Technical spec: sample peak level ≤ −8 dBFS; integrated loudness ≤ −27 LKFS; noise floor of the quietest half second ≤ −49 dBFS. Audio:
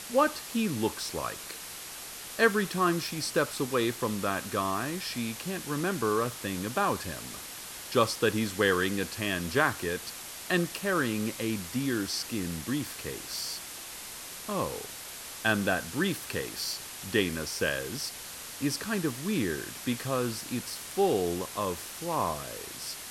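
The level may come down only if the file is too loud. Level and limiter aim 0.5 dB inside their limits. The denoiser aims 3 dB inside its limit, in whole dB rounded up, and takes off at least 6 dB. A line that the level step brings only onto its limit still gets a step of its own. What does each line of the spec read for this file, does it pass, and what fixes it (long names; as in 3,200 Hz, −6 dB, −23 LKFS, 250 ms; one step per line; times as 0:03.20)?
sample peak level −9.0 dBFS: in spec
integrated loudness −31.0 LKFS: in spec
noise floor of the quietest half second −42 dBFS: out of spec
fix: broadband denoise 10 dB, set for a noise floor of −42 dBFS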